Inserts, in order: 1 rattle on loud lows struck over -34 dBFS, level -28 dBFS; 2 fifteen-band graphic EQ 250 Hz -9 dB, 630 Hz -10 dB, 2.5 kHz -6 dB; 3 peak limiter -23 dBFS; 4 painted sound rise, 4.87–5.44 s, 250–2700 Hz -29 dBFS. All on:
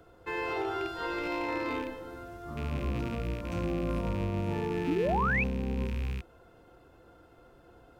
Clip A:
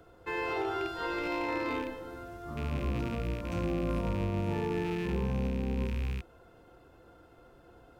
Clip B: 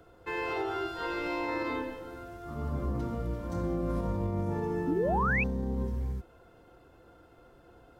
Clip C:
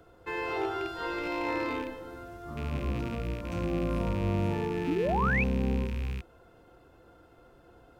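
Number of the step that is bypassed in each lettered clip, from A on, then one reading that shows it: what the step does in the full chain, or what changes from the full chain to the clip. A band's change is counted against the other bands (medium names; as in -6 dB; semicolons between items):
4, 2 kHz band -3.5 dB; 1, 4 kHz band -2.5 dB; 3, loudness change +1.0 LU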